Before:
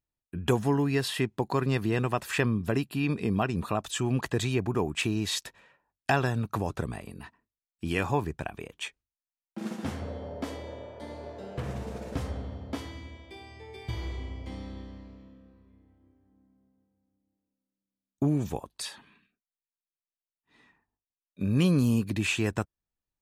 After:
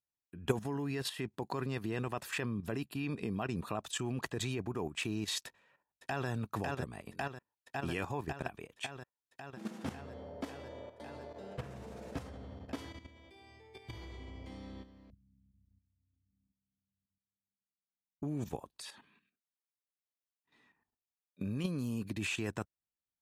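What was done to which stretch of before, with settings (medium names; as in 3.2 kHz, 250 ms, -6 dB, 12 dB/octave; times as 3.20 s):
5.46–6.28 s: echo throw 550 ms, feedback 80%, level -5.5 dB
15.10–18.23 s: inverse Chebyshev low-pass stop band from 940 Hz, stop band 80 dB
whole clip: high-pass 92 Hz 6 dB/octave; level held to a coarse grid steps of 11 dB; trim -3 dB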